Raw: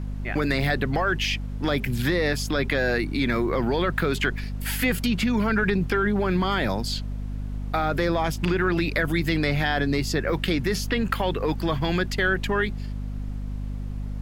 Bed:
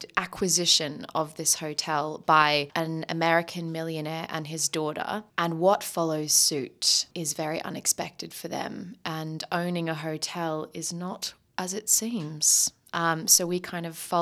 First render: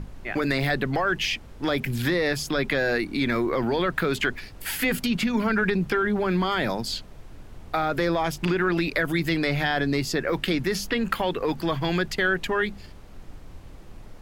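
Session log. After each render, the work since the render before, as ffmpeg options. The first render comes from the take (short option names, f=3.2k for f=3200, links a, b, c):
-af "bandreject=f=50:t=h:w=6,bandreject=f=100:t=h:w=6,bandreject=f=150:t=h:w=6,bandreject=f=200:t=h:w=6,bandreject=f=250:t=h:w=6"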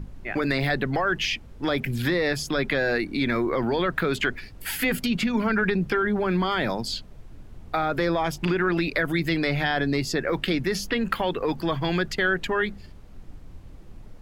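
-af "afftdn=nr=6:nf=-44"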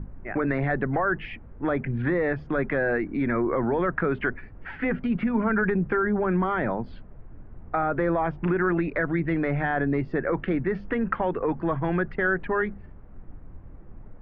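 -af "lowpass=f=1.8k:w=0.5412,lowpass=f=1.8k:w=1.3066"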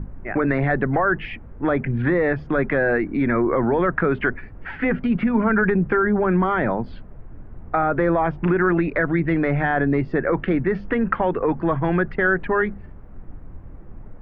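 -af "volume=5dB"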